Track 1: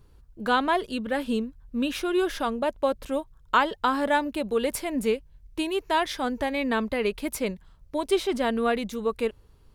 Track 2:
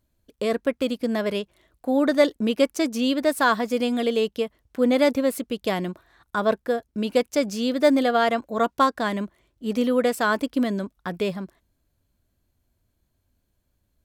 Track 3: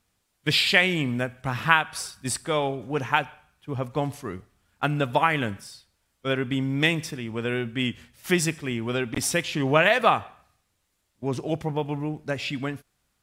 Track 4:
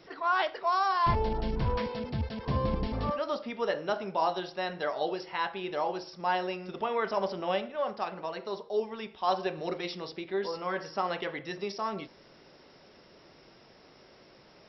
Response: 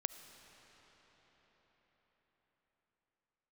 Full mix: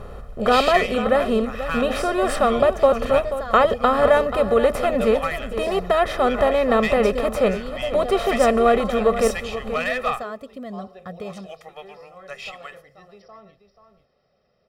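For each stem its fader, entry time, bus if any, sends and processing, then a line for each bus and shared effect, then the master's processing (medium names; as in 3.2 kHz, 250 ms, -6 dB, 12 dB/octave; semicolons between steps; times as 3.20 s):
+0.5 dB, 0.00 s, no send, echo send -11.5 dB, spectral levelling over time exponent 0.6; treble shelf 4.2 kHz -8.5 dB
-9.0 dB, 0.00 s, no send, no echo send, compression 3:1, threshold -25 dBFS, peak gain reduction 9.5 dB
-1.5 dB, 0.00 s, no send, no echo send, overload inside the chain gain 11.5 dB; high-pass 1.2 kHz 12 dB/octave; valve stage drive 16 dB, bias 0.45
-16.0 dB, 1.50 s, no send, echo send -9.5 dB, none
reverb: none
echo: delay 483 ms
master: tilt shelf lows +4.5 dB, about 1.5 kHz; comb 1.6 ms, depth 81%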